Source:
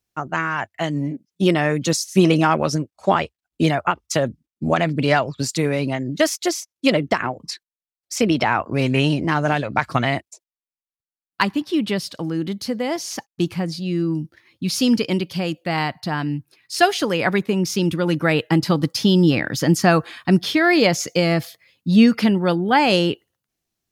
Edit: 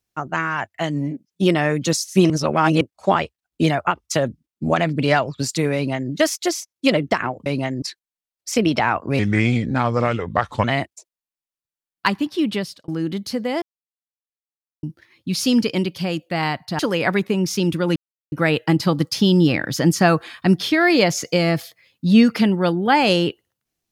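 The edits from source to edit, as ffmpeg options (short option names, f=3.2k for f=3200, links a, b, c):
-filter_complex "[0:a]asplit=12[a][b][c][d][e][f][g][h][i][j][k][l];[a]atrim=end=2.302[m];[b]atrim=start=2.298:end=2.812,asetpts=PTS-STARTPTS,areverse[n];[c]atrim=start=2.808:end=7.462[o];[d]atrim=start=5.748:end=6.112[p];[e]atrim=start=7.458:end=8.834[q];[f]atrim=start=8.83:end=9.99,asetpts=PTS-STARTPTS,asetrate=35280,aresample=44100[r];[g]atrim=start=9.986:end=12.23,asetpts=PTS-STARTPTS,afade=t=out:st=1.894:d=0.35[s];[h]atrim=start=12.23:end=12.97,asetpts=PTS-STARTPTS,afade=t=in:d=0.004:c=hsin,afade=t=out:st=0.736:d=0.004:c=hsin[t];[i]atrim=start=12.97:end=14.18,asetpts=PTS-STARTPTS,volume=0[u];[j]atrim=start=14.18:end=16.142,asetpts=PTS-STARTPTS,afade=t=in:d=0.004:c=hsin[v];[k]atrim=start=16.978:end=18.15,asetpts=PTS-STARTPTS,afade=t=out:st=1.168:d=0.004:c=hsin,apad=pad_dur=0.36[w];[l]atrim=start=18.15,asetpts=PTS-STARTPTS,afade=t=in:d=0.004:c=hsin[x];[m][n]acrossfade=d=0.004:c1=hsin:c2=hsin[y];[y][o]acrossfade=d=0.004:c1=hsin:c2=hsin[z];[z][p]acrossfade=d=0.004:c1=hsin:c2=hsin[aa];[aa][q]acrossfade=d=0.004:c1=hsin:c2=hsin[ab];[ab][r]acrossfade=d=0.004:c1=hsin:c2=hsin[ac];[s][t][u][v]concat=n=4:v=0:a=1[ad];[ac][ad]acrossfade=d=0.004:c1=hsin:c2=hsin[ae];[w][x]concat=n=2:v=0:a=1[af];[ae][af]acrossfade=d=0.004:c1=hsin:c2=hsin"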